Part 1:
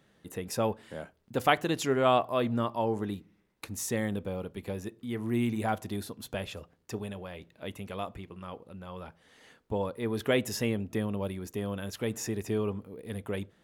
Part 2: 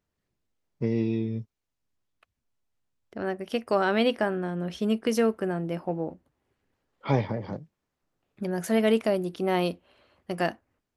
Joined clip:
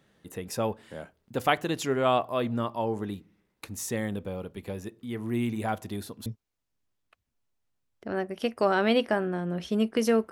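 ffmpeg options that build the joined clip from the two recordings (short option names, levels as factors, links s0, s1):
-filter_complex "[0:a]apad=whole_dur=10.31,atrim=end=10.31,atrim=end=6.262[s0];[1:a]atrim=start=1.358:end=5.41[s1];[s0][s1]acrossfade=d=0.004:c1=hsin:c2=hsin"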